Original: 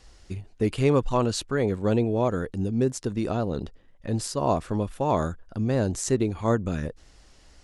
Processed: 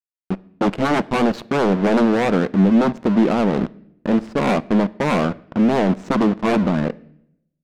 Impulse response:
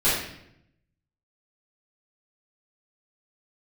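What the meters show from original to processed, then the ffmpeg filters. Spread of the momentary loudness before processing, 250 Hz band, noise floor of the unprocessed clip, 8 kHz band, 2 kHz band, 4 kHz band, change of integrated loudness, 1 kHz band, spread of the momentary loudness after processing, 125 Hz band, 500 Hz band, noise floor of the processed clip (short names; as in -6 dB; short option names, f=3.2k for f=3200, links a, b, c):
10 LU, +10.5 dB, -55 dBFS, n/a, +12.0 dB, +5.5 dB, +7.5 dB, +7.5 dB, 8 LU, +2.0 dB, +5.5 dB, -76 dBFS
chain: -filter_complex "[0:a]aeval=exprs='0.355*sin(PI/2*5.01*val(0)/0.355)':c=same,lowshelf=f=140:t=q:w=3:g=-11.5,aeval=exprs='val(0)*gte(abs(val(0)),0.15)':c=same,adynamicsmooth=sensitivity=0.5:basefreq=640,asplit=2[a][b];[1:a]atrim=start_sample=2205[c];[b][c]afir=irnorm=-1:irlink=0,volume=-34.5dB[d];[a][d]amix=inputs=2:normalize=0,volume=-5.5dB"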